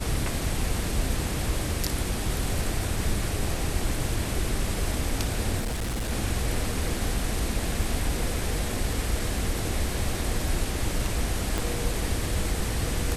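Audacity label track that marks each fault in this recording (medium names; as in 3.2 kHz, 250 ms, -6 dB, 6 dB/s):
5.590000	6.110000	clipped -25.5 dBFS
11.580000	11.580000	pop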